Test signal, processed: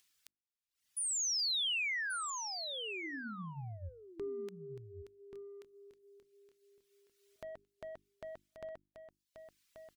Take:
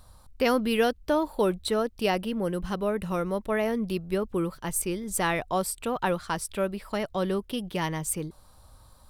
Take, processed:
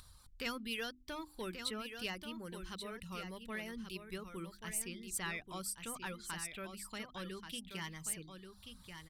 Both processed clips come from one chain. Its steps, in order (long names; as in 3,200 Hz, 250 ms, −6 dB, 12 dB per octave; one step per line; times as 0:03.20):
mid-hump overdrive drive 10 dB, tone 5,200 Hz, clips at −11 dBFS
reverb reduction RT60 0.79 s
guitar amp tone stack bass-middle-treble 6-0-2
in parallel at +1 dB: upward compression, threshold −50 dBFS
on the sum: mains-hum notches 50/100/150/200/250/300/350 Hz
on a send: single-tap delay 1,133 ms −8 dB
on the sum: level −1 dB